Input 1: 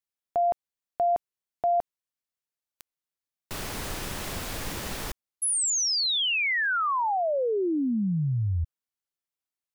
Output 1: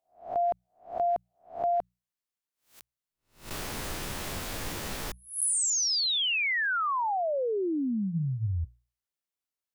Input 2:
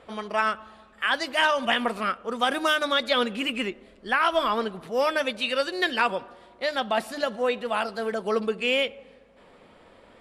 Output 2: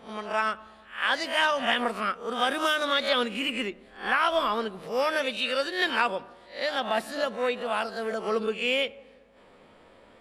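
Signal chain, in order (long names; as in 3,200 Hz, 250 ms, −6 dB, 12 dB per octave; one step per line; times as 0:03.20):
peak hold with a rise ahead of every peak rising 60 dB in 0.36 s
mains-hum notches 60/120/180 Hz
level −3 dB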